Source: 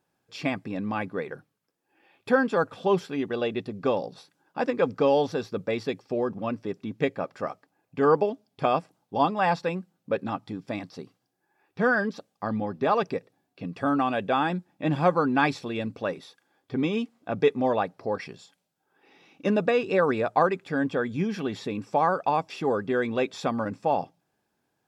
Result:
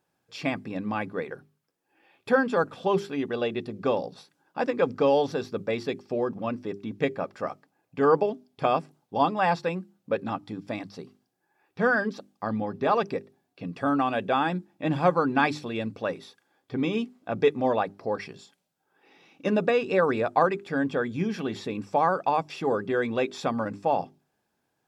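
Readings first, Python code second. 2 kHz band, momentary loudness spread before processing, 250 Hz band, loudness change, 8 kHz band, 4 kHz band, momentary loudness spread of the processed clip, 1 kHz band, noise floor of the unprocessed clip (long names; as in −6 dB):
0.0 dB, 12 LU, −1.0 dB, 0.0 dB, can't be measured, 0.0 dB, 12 LU, 0.0 dB, −77 dBFS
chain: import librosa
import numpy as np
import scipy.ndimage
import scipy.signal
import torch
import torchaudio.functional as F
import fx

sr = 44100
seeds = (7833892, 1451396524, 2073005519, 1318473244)

y = fx.hum_notches(x, sr, base_hz=50, count=8)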